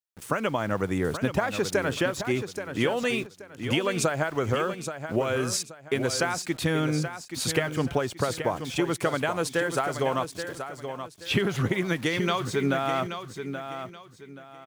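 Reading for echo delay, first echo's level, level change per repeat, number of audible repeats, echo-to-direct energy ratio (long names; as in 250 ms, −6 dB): 828 ms, −9.0 dB, −11.0 dB, 3, −8.5 dB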